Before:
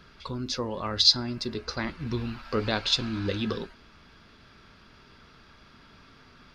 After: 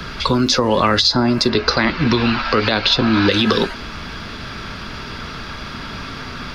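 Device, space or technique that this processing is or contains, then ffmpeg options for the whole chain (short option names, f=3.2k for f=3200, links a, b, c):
mastering chain: -filter_complex "[0:a]asettb=1/sr,asplit=3[a][b][c];[a]atrim=end=1.494[d];[b]atrim=start=1.49:end=3.32,asetpts=PTS-STARTPTS,afade=t=in:d=0.004:c=qsin,afade=t=out:st=1.826:d=0.004:c=qsin,lowpass=f=5.3k:w=0.5412,lowpass=f=5.3k:w=1.3066[e];[c]atrim=start=3.316[f];[d][e]acrossfade=d=0.004:c1=hsin:c2=qsin[g];[g][f]acrossfade=d=0.004:c1=qsin:c2=hsin,equalizer=f=390:t=o:w=0.77:g=-2,acrossover=split=210|470|1400[h][i][j][k];[h]acompressor=threshold=-49dB:ratio=4[l];[i]acompressor=threshold=-40dB:ratio=4[m];[j]acompressor=threshold=-41dB:ratio=4[n];[k]acompressor=threshold=-36dB:ratio=4[o];[l][m][n][o]amix=inputs=4:normalize=0,acompressor=threshold=-35dB:ratio=3,alimiter=level_in=27.5dB:limit=-1dB:release=50:level=0:latency=1,volume=-3dB"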